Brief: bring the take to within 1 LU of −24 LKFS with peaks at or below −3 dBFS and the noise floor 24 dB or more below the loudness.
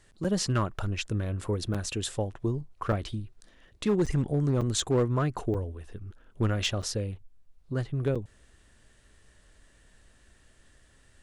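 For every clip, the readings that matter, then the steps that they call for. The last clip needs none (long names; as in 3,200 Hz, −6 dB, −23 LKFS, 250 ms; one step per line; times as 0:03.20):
share of clipped samples 0.5%; peaks flattened at −19.0 dBFS; number of dropouts 8; longest dropout 6.3 ms; integrated loudness −30.0 LKFS; sample peak −19.0 dBFS; target loudness −24.0 LKFS
→ clipped peaks rebuilt −19 dBFS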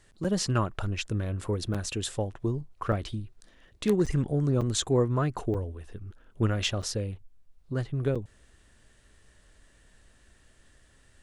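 share of clipped samples 0.0%; number of dropouts 8; longest dropout 6.3 ms
→ repair the gap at 0:00.24/0:01.74/0:02.92/0:04.06/0:04.61/0:05.54/0:06.82/0:08.15, 6.3 ms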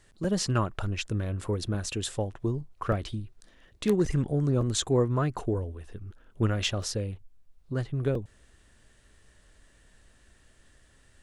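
number of dropouts 0; integrated loudness −29.5 LKFS; sample peak −11.5 dBFS; target loudness −24.0 LKFS
→ level +5.5 dB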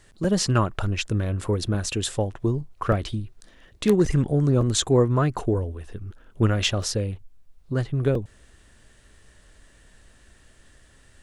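integrated loudness −24.0 LKFS; sample peak −6.0 dBFS; background noise floor −56 dBFS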